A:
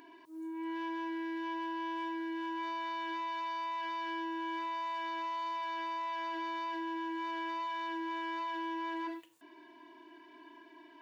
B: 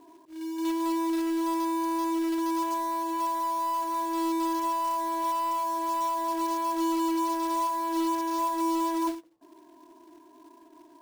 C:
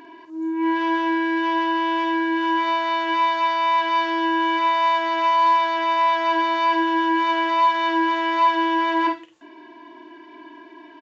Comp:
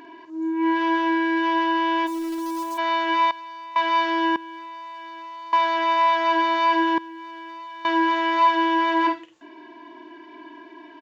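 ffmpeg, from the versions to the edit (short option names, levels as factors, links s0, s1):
-filter_complex "[0:a]asplit=3[s0][s1][s2];[2:a]asplit=5[s3][s4][s5][s6][s7];[s3]atrim=end=2.08[s8];[1:a]atrim=start=2.06:end=2.79[s9];[s4]atrim=start=2.77:end=3.312[s10];[s0]atrim=start=3.308:end=3.762[s11];[s5]atrim=start=3.758:end=4.362[s12];[s1]atrim=start=4.358:end=5.532[s13];[s6]atrim=start=5.528:end=6.982[s14];[s2]atrim=start=6.978:end=7.852[s15];[s7]atrim=start=7.848[s16];[s8][s9]acrossfade=d=0.02:c1=tri:c2=tri[s17];[s17][s10]acrossfade=d=0.02:c1=tri:c2=tri[s18];[s18][s11]acrossfade=d=0.004:c1=hsin:c2=hsin[s19];[s19][s12]acrossfade=d=0.004:c1=hsin:c2=hsin[s20];[s20][s13]acrossfade=d=0.004:c1=hsin:c2=hsin[s21];[s21][s14]acrossfade=d=0.004:c1=hsin:c2=hsin[s22];[s22][s15]acrossfade=d=0.004:c1=hsin:c2=hsin[s23];[s23][s16]acrossfade=d=0.004:c1=hsin:c2=hsin"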